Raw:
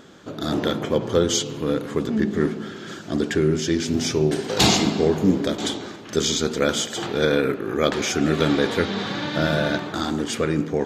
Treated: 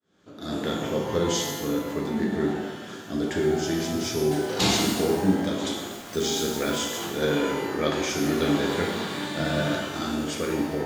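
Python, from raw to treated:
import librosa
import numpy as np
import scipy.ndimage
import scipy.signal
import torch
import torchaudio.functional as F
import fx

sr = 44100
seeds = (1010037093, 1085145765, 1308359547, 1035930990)

y = fx.fade_in_head(x, sr, length_s=0.58)
y = fx.quant_dither(y, sr, seeds[0], bits=6, dither='none', at=(5.91, 6.78))
y = fx.rev_shimmer(y, sr, seeds[1], rt60_s=1.0, semitones=12, shimmer_db=-8, drr_db=-0.5)
y = y * librosa.db_to_amplitude(-8.0)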